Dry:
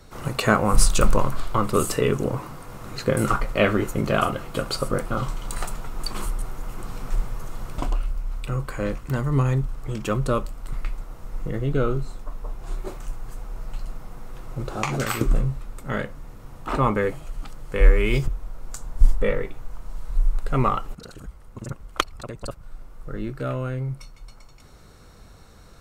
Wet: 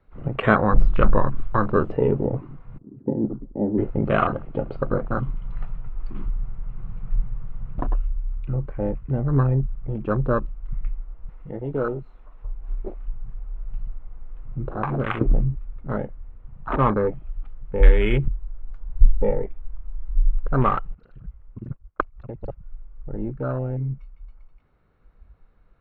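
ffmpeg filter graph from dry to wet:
-filter_complex "[0:a]asettb=1/sr,asplit=3[s0][s1][s2];[s0]atrim=end=2.784[s3];[s1]atrim=start=2.78:end=3.78,asetpts=PTS-STARTPTS,afade=t=in:d=0.004:c=qsin,afade=t=out:st=0.996:d=0.004:c=qsin,lowpass=f=280:t=q:w=2.3,aemphasis=mode=production:type=bsi,bandreject=f=60:t=h:w=6,bandreject=f=120:t=h:w=6,bandreject=f=180:t=h:w=6[s4];[s2]atrim=start=3.776[s5];[s3][s4]acrossfade=d=0.004:c1=hsin:c2=qsin[s6];[s6][s5]acrossfade=d=0.004:c1=qsin:c2=hsin,asettb=1/sr,asplit=3[s7][s8][s9];[s7]atrim=end=11.294[s10];[s8]atrim=start=11.29:end=12.45,asetpts=PTS-STARTPTS,afade=t=in:d=0.004:c=qsin,afade=t=out:st=1.156:d=0.004:c=qsin,aemphasis=mode=production:type=bsi,bandreject=f=4700:w=9.8,acompressor=mode=upward:threshold=0.0224:ratio=2.5:attack=3.2:release=140:knee=2.83:detection=peak[s11];[s9]atrim=start=12.446[s12];[s10][s11]acrossfade=d=0.004:c1=hsin:c2=qsin[s13];[s13][s12]acrossfade=d=0.004:c1=qsin:c2=hsin,asettb=1/sr,asplit=3[s14][s15][s16];[s14]atrim=end=21.674[s17];[s15]atrim=start=21.67:end=22.17,asetpts=PTS-STARTPTS,afade=t=in:d=0.004:c=qsin,afade=t=out:st=0.496:d=0.004:c=qsin,lowpass=2300,agate=range=0.0224:threshold=0.0251:ratio=3:release=100:detection=peak[s18];[s16]atrim=start=22.166[s19];[s17][s18]acrossfade=d=0.004:c1=hsin:c2=qsin[s20];[s20][s19]acrossfade=d=0.004:c1=qsin:c2=hsin,lowpass=f=2700:w=0.5412,lowpass=f=2700:w=1.3066,afwtdn=0.0447,volume=1.19"

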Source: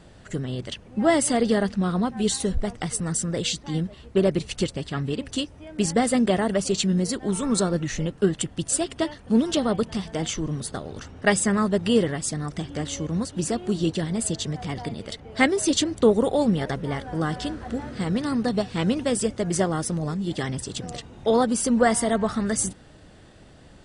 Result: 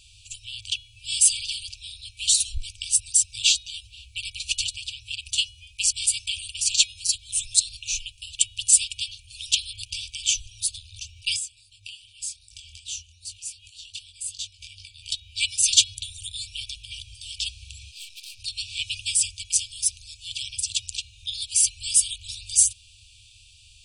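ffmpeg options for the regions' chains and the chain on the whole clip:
-filter_complex "[0:a]asettb=1/sr,asplit=3[s0][s1][s2];[s0]atrim=end=11.364[s3];[s1]atrim=start=11.36:end=15.03,asetpts=PTS-STARTPTS,afade=t=in:d=0.004:c=qsin,afade=t=out:st=3.666:d=0.004:c=qsin,acompressor=threshold=0.0251:ratio=8:attack=3.2:release=140:knee=1:detection=peak,flanger=delay=19.5:depth=5.5:speed=2.6[s4];[s2]atrim=start=15.026[s5];[s3][s4]acrossfade=d=0.004:c1=hsin:c2=qsin[s6];[s6][s5]acrossfade=d=0.004:c1=qsin:c2=hsin,asettb=1/sr,asplit=3[s7][s8][s9];[s7]atrim=end=17.914[s10];[s8]atrim=start=17.91:end=18.4,asetpts=PTS-STARTPTS,afade=t=in:d=0.004:c=qsin,afade=t=out:st=0.486:d=0.004:c=qsin,highpass=430,aeval=exprs='(tanh(89.1*val(0)+0.6)-tanh(0.6))/89.1':c=same[s11];[s9]atrim=start=18.396[s12];[s10][s11]acrossfade=d=0.004:c1=hsin:c2=qsin[s13];[s13][s12]acrossfade=d=0.004:c1=qsin:c2=hsin,afftfilt=real='re*(1-between(b*sr/4096,110,2300))':imag='im*(1-between(b*sr/4096,110,2300))':win_size=4096:overlap=0.75,tiltshelf=f=750:g=-6.5,bandreject=f=418.7:t=h:w=4,bandreject=f=837.4:t=h:w=4,bandreject=f=1256.1:t=h:w=4,bandreject=f=1674.8:t=h:w=4,bandreject=f=2093.5:t=h:w=4,bandreject=f=2512.2:t=h:w=4,bandreject=f=2930.9:t=h:w=4,bandreject=f=3349.6:t=h:w=4,bandreject=f=3768.3:t=h:w=4,bandreject=f=4187:t=h:w=4,volume=1.33"

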